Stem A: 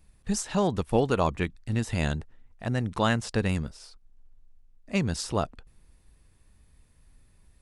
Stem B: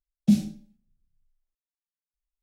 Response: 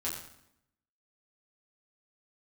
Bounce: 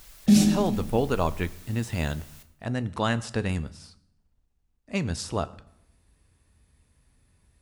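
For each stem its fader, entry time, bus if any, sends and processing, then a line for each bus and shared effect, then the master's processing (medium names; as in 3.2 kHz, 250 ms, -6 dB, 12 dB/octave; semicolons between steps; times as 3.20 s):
-2.0 dB, 0.00 s, send -15.5 dB, high-pass 44 Hz
+2.5 dB, 0.00 s, send -9 dB, bass shelf 210 Hz -10 dB; level flattener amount 70%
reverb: on, RT60 0.80 s, pre-delay 6 ms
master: none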